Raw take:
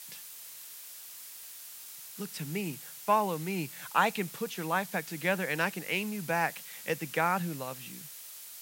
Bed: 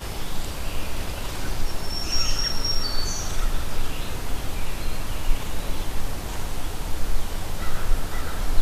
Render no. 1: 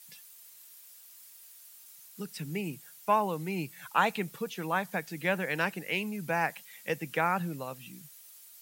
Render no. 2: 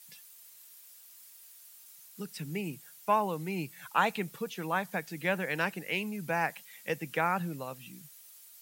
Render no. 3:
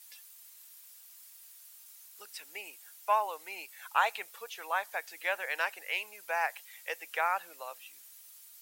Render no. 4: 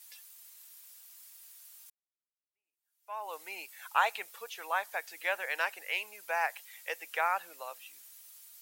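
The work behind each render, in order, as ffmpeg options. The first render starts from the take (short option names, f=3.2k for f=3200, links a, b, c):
-af "afftdn=nr=10:nf=-47"
-af "volume=-1dB"
-af "highpass=f=600:w=0.5412,highpass=f=600:w=1.3066"
-filter_complex "[0:a]asplit=2[a][b];[a]atrim=end=1.9,asetpts=PTS-STARTPTS,afade=t=out:st=1.896:d=0.004:c=hsin[c];[b]atrim=start=1.9,asetpts=PTS-STARTPTS,afade=t=in:d=1.44:c=exp[d];[c][d]concat=n=2:v=0:a=1"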